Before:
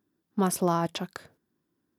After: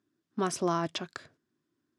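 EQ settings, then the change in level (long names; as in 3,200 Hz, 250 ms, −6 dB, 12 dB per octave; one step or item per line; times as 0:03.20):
loudspeaker in its box 100–8,000 Hz, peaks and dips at 190 Hz −9 dB, 490 Hz −7 dB, 840 Hz −8 dB
0.0 dB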